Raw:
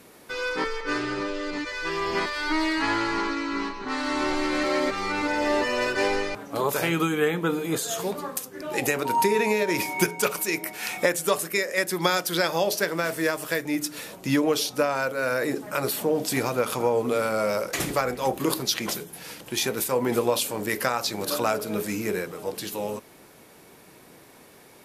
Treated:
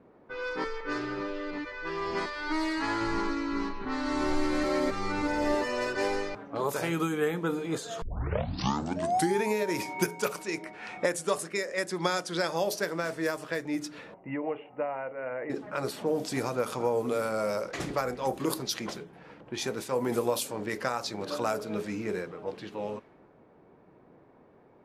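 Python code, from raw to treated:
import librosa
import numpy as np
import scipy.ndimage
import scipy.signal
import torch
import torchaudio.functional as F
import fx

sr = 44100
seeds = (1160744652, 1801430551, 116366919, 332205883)

y = fx.low_shelf(x, sr, hz=190.0, db=10.0, at=(3.01, 5.55))
y = fx.steep_lowpass(y, sr, hz=11000.0, slope=36, at=(10.42, 12.56))
y = fx.cheby_ripple(y, sr, hz=2900.0, ripple_db=9, at=(14.14, 15.5))
y = fx.edit(y, sr, fx.tape_start(start_s=8.02, length_s=1.45), tone=tone)
y = fx.env_lowpass(y, sr, base_hz=920.0, full_db=-19.5)
y = fx.dynamic_eq(y, sr, hz=2800.0, q=1.1, threshold_db=-40.0, ratio=4.0, max_db=-5)
y = F.gain(torch.from_numpy(y), -4.5).numpy()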